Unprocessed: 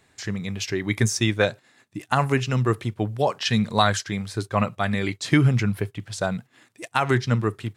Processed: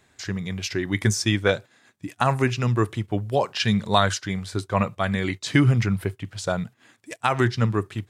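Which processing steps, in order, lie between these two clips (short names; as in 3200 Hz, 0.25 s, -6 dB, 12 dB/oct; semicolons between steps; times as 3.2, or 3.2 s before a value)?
speed mistake 25 fps video run at 24 fps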